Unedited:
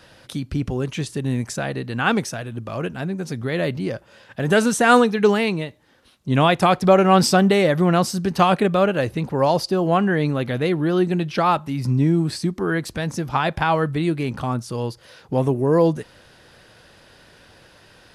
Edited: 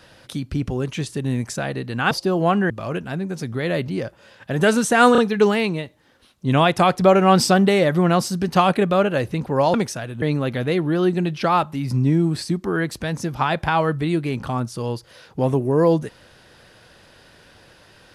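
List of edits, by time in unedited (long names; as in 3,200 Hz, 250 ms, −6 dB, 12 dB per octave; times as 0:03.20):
0:02.11–0:02.59: swap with 0:09.57–0:10.16
0:05.01: stutter 0.03 s, 3 plays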